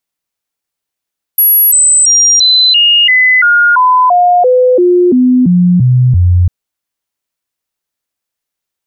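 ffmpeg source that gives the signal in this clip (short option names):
-f lavfi -i "aevalsrc='0.631*clip(min(mod(t,0.34),0.34-mod(t,0.34))/0.005,0,1)*sin(2*PI*11400*pow(2,-floor(t/0.34)/2)*mod(t,0.34))':d=5.1:s=44100"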